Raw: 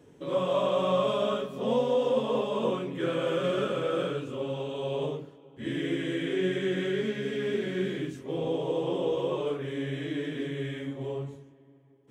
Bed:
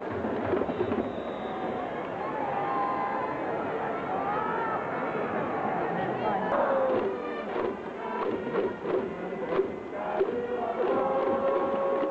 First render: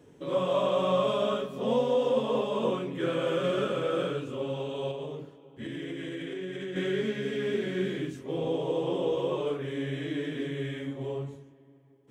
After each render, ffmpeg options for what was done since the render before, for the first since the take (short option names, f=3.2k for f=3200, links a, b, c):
-filter_complex "[0:a]asettb=1/sr,asplit=3[a][b][c];[a]atrim=end=4.914[d];[b]atrim=start=4.91:end=6.76,asetpts=PTS-STARTPTS,afade=t=in:d=0.004:c=qsin,afade=t=out:st=1.846:d=0.004:c=qsin,acompressor=threshold=-33dB:ratio=6:attack=3.2:release=140:knee=1:detection=peak[e];[c]atrim=start=6.756[f];[d][e]acrossfade=d=0.004:c1=hsin:c2=qsin[g];[g][f]acrossfade=d=0.004:c1=qsin:c2=hsin"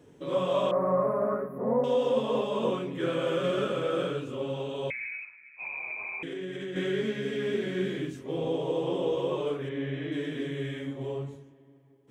-filter_complex "[0:a]asettb=1/sr,asplit=3[a][b][c];[a]atrim=end=0.714[d];[b]atrim=start=0.71:end=1.84,asetpts=PTS-STARTPTS,afade=t=in:d=0.004:c=qsin,afade=t=out:st=1.126:d=0.004:c=qsin,asuperstop=centerf=4900:order=20:qfactor=0.6[e];[c]atrim=start=1.836[f];[d][e]acrossfade=d=0.004:c1=hsin:c2=qsin[g];[g][f]acrossfade=d=0.004:c1=qsin:c2=hsin,asettb=1/sr,asplit=3[h][i][j];[h]atrim=end=4.904[k];[i]atrim=start=4.9:end=6.23,asetpts=PTS-STARTPTS,afade=t=in:d=0.004:c=qsin,afade=t=out:st=1.326:d=0.004:c=qsin,lowpass=f=2.3k:t=q:w=0.5098,lowpass=f=2.3k:t=q:w=0.6013,lowpass=f=2.3k:t=q:w=0.9,lowpass=f=2.3k:t=q:w=2.563,afreqshift=-2700[l];[j]atrim=start=6.226[m];[k][l]acrossfade=d=0.004:c1=hsin:c2=qsin[n];[n][m]acrossfade=d=0.004:c1=qsin:c2=hsin,asplit=3[o][p][q];[o]afade=t=out:st=9.68:d=0.02[r];[p]lowpass=3.1k,afade=t=in:st=9.68:d=0.02,afade=t=out:st=10.11:d=0.02[s];[q]afade=t=in:st=10.11:d=0.02[t];[r][s][t]amix=inputs=3:normalize=0"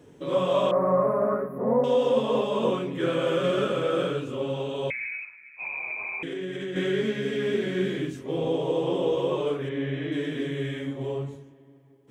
-af "volume=3.5dB"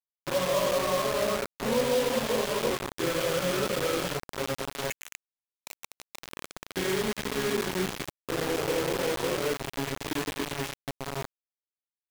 -af "flanger=delay=0.3:depth=2.6:regen=-67:speed=0.53:shape=triangular,acrusher=bits=4:mix=0:aa=0.000001"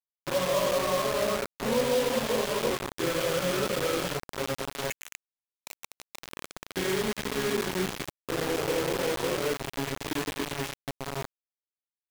-af anull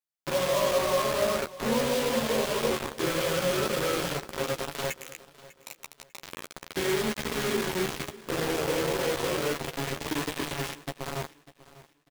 -filter_complex "[0:a]asplit=2[a][b];[b]adelay=13,volume=-7dB[c];[a][c]amix=inputs=2:normalize=0,aecho=1:1:597|1194|1791:0.112|0.0337|0.0101"